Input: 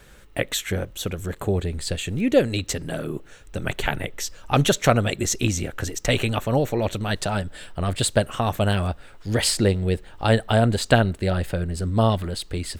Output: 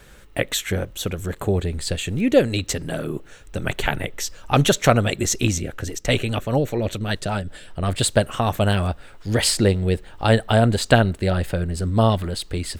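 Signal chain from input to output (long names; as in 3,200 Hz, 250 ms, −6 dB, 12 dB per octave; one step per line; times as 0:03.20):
0:05.58–0:07.83: rotating-speaker cabinet horn 5 Hz
level +2 dB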